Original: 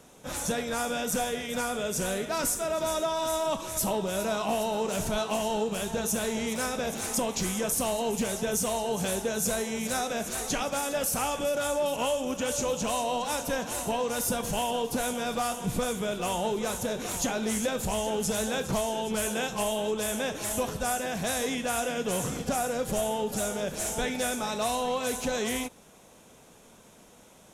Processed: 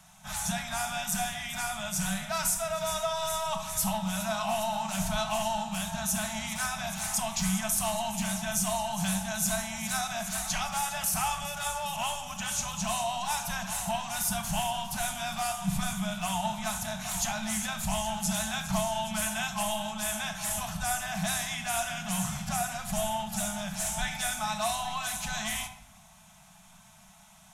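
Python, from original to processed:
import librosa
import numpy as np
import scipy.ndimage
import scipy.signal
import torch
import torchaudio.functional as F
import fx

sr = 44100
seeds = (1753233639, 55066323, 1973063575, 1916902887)

y = scipy.signal.sosfilt(scipy.signal.ellip(3, 1.0, 40, [190.0, 710.0], 'bandstop', fs=sr, output='sos'), x)
y = fx.room_shoebox(y, sr, seeds[0], volume_m3=2700.0, walls='furnished', distance_m=1.5)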